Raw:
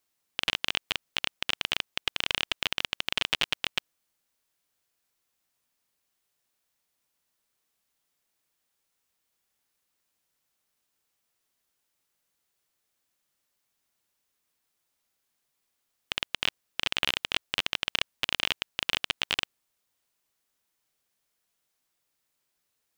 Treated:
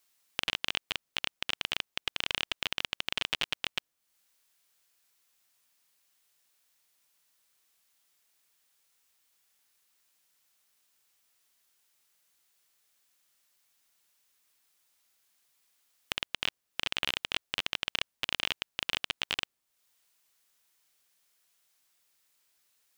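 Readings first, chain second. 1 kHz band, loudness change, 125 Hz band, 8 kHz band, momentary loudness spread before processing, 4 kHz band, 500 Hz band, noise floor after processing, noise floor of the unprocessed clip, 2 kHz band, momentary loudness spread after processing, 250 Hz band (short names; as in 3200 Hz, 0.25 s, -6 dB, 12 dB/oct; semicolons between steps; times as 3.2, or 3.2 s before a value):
-3.5 dB, -3.5 dB, -3.5 dB, -3.5 dB, 5 LU, -3.5 dB, -3.5 dB, -82 dBFS, -79 dBFS, -3.5 dB, 4 LU, -3.5 dB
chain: in parallel at +2 dB: level quantiser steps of 12 dB; on the sum: mismatched tape noise reduction encoder only; gain -7.5 dB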